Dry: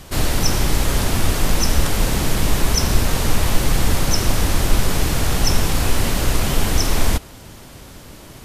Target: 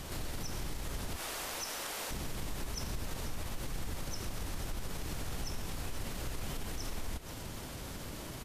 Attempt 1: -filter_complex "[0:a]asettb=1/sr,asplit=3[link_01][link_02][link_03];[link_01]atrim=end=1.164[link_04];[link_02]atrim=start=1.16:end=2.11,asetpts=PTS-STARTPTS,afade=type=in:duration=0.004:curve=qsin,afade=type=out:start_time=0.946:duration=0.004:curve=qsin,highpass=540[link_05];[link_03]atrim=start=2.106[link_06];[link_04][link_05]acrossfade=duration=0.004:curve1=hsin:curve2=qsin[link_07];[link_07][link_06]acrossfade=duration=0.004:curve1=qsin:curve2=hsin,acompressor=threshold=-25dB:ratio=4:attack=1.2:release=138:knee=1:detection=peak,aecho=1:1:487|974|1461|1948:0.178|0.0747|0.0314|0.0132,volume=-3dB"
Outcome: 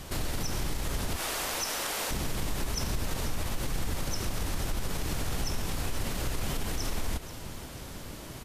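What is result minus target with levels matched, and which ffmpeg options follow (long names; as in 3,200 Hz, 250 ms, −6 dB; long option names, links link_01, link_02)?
downward compressor: peak gain reduction −7 dB
-filter_complex "[0:a]asettb=1/sr,asplit=3[link_01][link_02][link_03];[link_01]atrim=end=1.164[link_04];[link_02]atrim=start=1.16:end=2.11,asetpts=PTS-STARTPTS,afade=type=in:duration=0.004:curve=qsin,afade=type=out:start_time=0.946:duration=0.004:curve=qsin,highpass=540[link_05];[link_03]atrim=start=2.106[link_06];[link_04][link_05]acrossfade=duration=0.004:curve1=hsin:curve2=qsin[link_07];[link_07][link_06]acrossfade=duration=0.004:curve1=qsin:curve2=hsin,acompressor=threshold=-34.5dB:ratio=4:attack=1.2:release=138:knee=1:detection=peak,aecho=1:1:487|974|1461|1948:0.178|0.0747|0.0314|0.0132,volume=-3dB"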